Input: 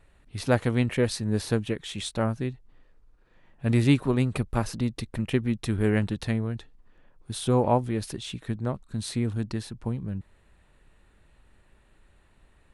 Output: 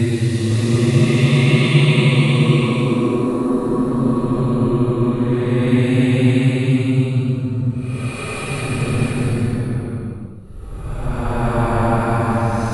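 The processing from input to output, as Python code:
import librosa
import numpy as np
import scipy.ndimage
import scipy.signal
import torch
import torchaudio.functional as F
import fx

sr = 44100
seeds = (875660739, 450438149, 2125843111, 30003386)

y = fx.spec_repair(x, sr, seeds[0], start_s=3.87, length_s=0.22, low_hz=220.0, high_hz=1600.0, source='after')
y = fx.paulstretch(y, sr, seeds[1], factor=15.0, window_s=0.1, from_s=3.8)
y = fx.echo_multitap(y, sr, ms=(514, 646), db=(-4.5, -8.0))
y = y * 10.0 ** (6.0 / 20.0)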